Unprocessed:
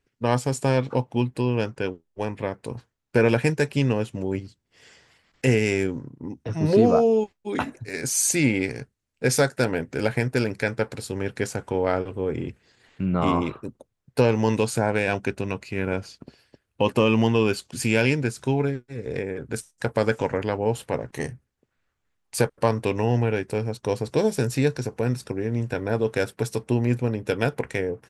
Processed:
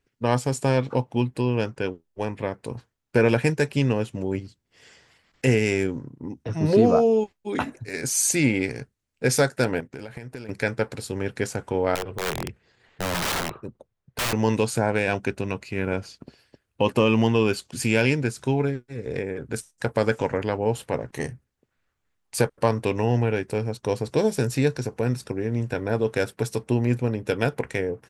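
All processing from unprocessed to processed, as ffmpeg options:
-filter_complex "[0:a]asettb=1/sr,asplit=3[s0][s1][s2];[s0]atrim=end=9.804[s3];[s1]atrim=start=9.8:end=10.49,asetpts=PTS-STARTPTS,afade=t=in:d=0.004:c=qsin,afade=t=out:st=0.686:d=0.004:c=qsin,agate=range=0.251:threshold=0.01:ratio=16:release=100:detection=peak,acompressor=threshold=0.0251:ratio=16:attack=3.2:release=140:knee=1:detection=peak[s4];[s2]atrim=start=10.486[s5];[s3][s4]acrossfade=d=0.004:c1=hsin:c2=qsin[s6];[s6][s5]acrossfade=d=0.004:c1=qsin:c2=hsin,asettb=1/sr,asplit=3[s7][s8][s9];[s7]atrim=end=11.954[s10];[s8]atrim=start=11.95:end=14.33,asetpts=PTS-STARTPTS,afade=t=in:d=0.004:c=qsin,afade=t=out:st=2.376:d=0.004:c=qsin,lowpass=f=2900:p=1,aeval=exprs='(mod(10.6*val(0)+1,2)-1)/10.6':c=same,equalizer=f=270:w=3.7:g=-6.5[s11];[s9]atrim=start=14.326[s12];[s10][s11]acrossfade=d=0.004:c1=hsin:c2=qsin[s13];[s13][s12]acrossfade=d=0.004:c1=qsin:c2=hsin"

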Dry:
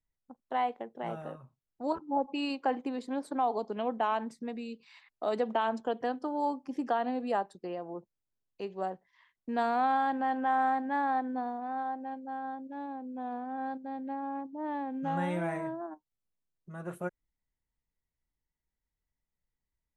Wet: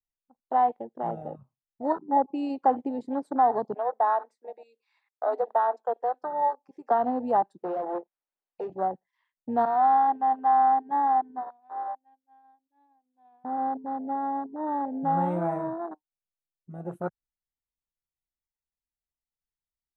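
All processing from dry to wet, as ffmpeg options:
-filter_complex "[0:a]asettb=1/sr,asplit=3[s0][s1][s2];[s0]atrim=end=3.744[s3];[s1]atrim=start=3.74:end=6.91,asetpts=PTS-STARTPTS,afade=t=in:d=0.004:c=qsin,afade=t=out:st=3.166:d=0.004:c=qsin,highpass=f=450:w=0.5412,highpass=f=450:w=1.3066,highshelf=f=2900:g=-8,bandreject=f=3000:w=9.3[s4];[s2]atrim=start=6.906[s5];[s3][s4]acrossfade=d=0.004:c1=hsin:c2=qsin[s6];[s6][s5]acrossfade=d=0.004:c1=qsin:c2=hsin,asettb=1/sr,asplit=3[s7][s8][s9];[s7]atrim=end=7.584[s10];[s8]atrim=start=7.58:end=8.7,asetpts=PTS-STARTPTS,afade=t=in:d=0.004:c=qsin,afade=t=out:st=1.116:d=0.004:c=qsin,bass=f=250:g=-8,treble=f=4000:g=-14,asplit=2[s11][s12];[s12]highpass=f=720:p=1,volume=11.2,asoftclip=type=tanh:threshold=0.0376[s13];[s11][s13]amix=inputs=2:normalize=0,lowpass=f=2300:p=1,volume=0.501,asplit=2[s14][s15];[s15]adelay=29,volume=0.251[s16];[s14][s16]amix=inputs=2:normalize=0,atrim=end_sample=49392[s17];[s9]atrim=start=8.696[s18];[s10][s17]acrossfade=d=0.004:c1=hsin:c2=qsin[s19];[s19][s18]acrossfade=d=0.004:c1=qsin:c2=hsin,asettb=1/sr,asplit=3[s20][s21][s22];[s20]atrim=end=9.654[s23];[s21]atrim=start=9.65:end=13.45,asetpts=PTS-STARTPTS,afade=t=in:d=0.004:c=qsin,afade=t=out:st=3.796:d=0.004:c=qsin,agate=range=0.0224:threshold=0.0316:ratio=3:release=100:detection=peak,highpass=f=150:w=0.5412,highpass=f=150:w=1.3066,equalizer=f=240:t=q:w=4:g=-10,equalizer=f=520:t=q:w=4:g=-10,equalizer=f=1400:t=q:w=4:g=-6,lowpass=f=4400:w=0.5412,lowpass=f=4400:w=1.3066[s24];[s22]atrim=start=13.446[s25];[s23][s24]acrossfade=d=0.004:c1=hsin:c2=qsin[s26];[s26][s25]acrossfade=d=0.004:c1=qsin:c2=hsin,afwtdn=0.0158,equalizer=f=800:t=o:w=0.44:g=5.5,volume=1.58"

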